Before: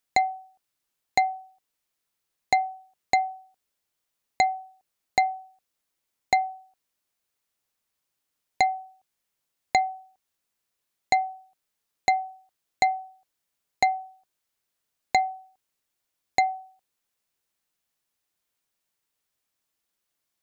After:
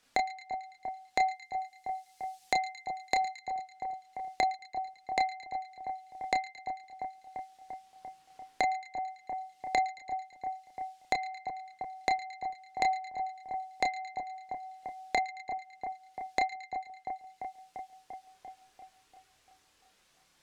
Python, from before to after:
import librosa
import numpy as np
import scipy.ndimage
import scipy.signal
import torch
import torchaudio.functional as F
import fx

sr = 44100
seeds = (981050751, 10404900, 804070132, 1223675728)

y = fx.high_shelf(x, sr, hz=3800.0, db=11.5, at=(1.18, 3.31), fade=0.02)
y = fx.chorus_voices(y, sr, voices=4, hz=0.15, base_ms=30, depth_ms=3.9, mix_pct=50)
y = fx.air_absorb(y, sr, metres=58.0)
y = fx.echo_split(y, sr, split_hz=1400.0, low_ms=344, high_ms=111, feedback_pct=52, wet_db=-13)
y = fx.band_squash(y, sr, depth_pct=70)